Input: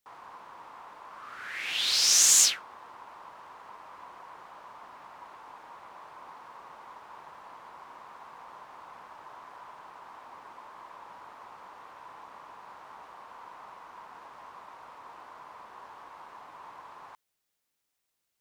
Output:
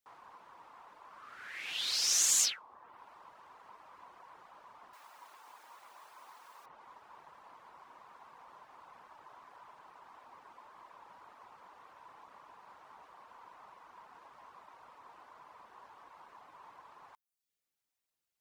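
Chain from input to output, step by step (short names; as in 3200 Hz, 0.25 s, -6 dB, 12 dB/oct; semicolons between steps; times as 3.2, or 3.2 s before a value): 4.93–6.66 RIAA curve recording; reverb removal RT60 0.57 s; gain -6.5 dB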